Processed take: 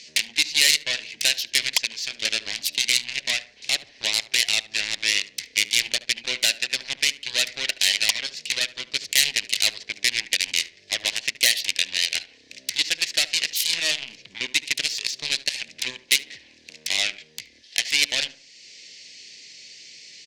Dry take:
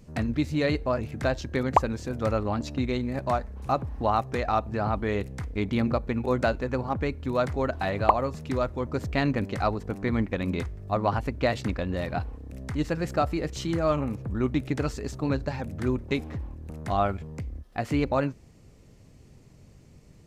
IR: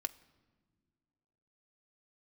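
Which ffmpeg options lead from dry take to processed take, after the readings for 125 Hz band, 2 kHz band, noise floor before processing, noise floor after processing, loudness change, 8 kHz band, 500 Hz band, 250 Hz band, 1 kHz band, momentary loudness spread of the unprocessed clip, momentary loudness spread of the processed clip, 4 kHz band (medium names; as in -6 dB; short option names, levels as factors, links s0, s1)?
under -20 dB, +11.5 dB, -53 dBFS, -54 dBFS, +6.0 dB, +25.0 dB, -14.5 dB, -19.5 dB, -17.0 dB, 6 LU, 15 LU, +22.5 dB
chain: -filter_complex "[0:a]highpass=370,equalizer=f=840:t=q:w=4:g=-7,equalizer=f=1200:t=q:w=4:g=-10,equalizer=f=2000:t=q:w=4:g=4,equalizer=f=4400:t=q:w=4:g=3,lowpass=f=5700:w=0.5412,lowpass=f=5700:w=1.3066,acompressor=threshold=0.00158:ratio=1.5,asoftclip=type=tanh:threshold=0.0398,aeval=exprs='0.0398*(cos(1*acos(clip(val(0)/0.0398,-1,1)))-cos(1*PI/2))+0.01*(cos(7*acos(clip(val(0)/0.0398,-1,1)))-cos(7*PI/2))':c=same,aexciter=amount=10.9:drive=9.2:freq=2000,asplit=2[s0][s1];[s1]adelay=73,lowpass=f=1600:p=1,volume=0.188,asplit=2[s2][s3];[s3]adelay=73,lowpass=f=1600:p=1,volume=0.4,asplit=2[s4][s5];[s5]adelay=73,lowpass=f=1600:p=1,volume=0.4,asplit=2[s6][s7];[s7]adelay=73,lowpass=f=1600:p=1,volume=0.4[s8];[s0][s2][s4][s6][s8]amix=inputs=5:normalize=0,volume=1.12"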